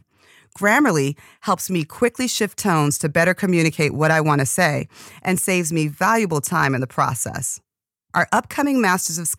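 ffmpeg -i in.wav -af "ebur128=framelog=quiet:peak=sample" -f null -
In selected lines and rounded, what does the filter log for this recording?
Integrated loudness:
  I:         -19.4 LUFS
  Threshold: -29.6 LUFS
Loudness range:
  LRA:         2.2 LU
  Threshold: -39.5 LUFS
  LRA low:   -20.8 LUFS
  LRA high:  -18.6 LUFS
Sample peak:
  Peak:       -4.1 dBFS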